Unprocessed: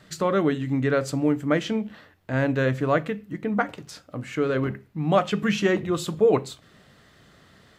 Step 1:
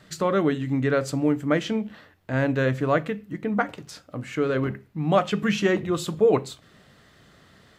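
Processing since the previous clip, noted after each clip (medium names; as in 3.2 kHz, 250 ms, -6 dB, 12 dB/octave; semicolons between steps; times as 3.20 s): no audible change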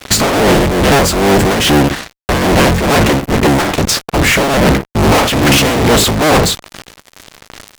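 cycle switcher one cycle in 3, inverted; fuzz box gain 46 dB, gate -48 dBFS; tremolo triangle 2.4 Hz, depth 55%; trim +6.5 dB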